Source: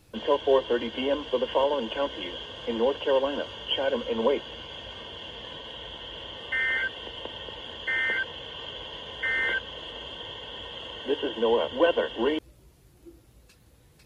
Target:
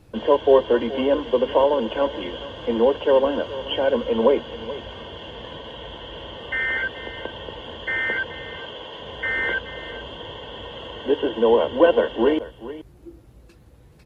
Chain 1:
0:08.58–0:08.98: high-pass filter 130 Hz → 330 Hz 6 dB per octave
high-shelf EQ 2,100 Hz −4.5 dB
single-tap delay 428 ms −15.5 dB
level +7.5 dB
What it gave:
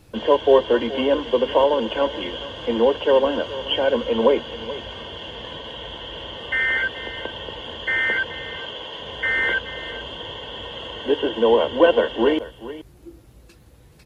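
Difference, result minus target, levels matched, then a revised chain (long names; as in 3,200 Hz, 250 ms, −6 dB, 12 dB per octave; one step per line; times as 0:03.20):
4,000 Hz band +4.5 dB
0:08.58–0:08.98: high-pass filter 130 Hz → 330 Hz 6 dB per octave
high-shelf EQ 2,100 Hz −11.5 dB
single-tap delay 428 ms −15.5 dB
level +7.5 dB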